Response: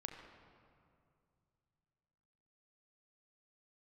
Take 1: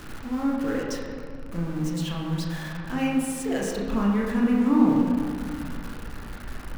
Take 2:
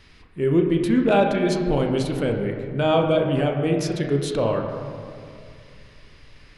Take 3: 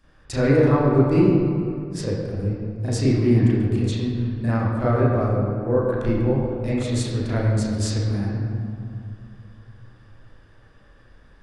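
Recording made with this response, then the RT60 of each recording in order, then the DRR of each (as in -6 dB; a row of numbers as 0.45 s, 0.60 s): 2; 2.3 s, 2.4 s, 2.3 s; -4.0 dB, 2.0 dB, -11.0 dB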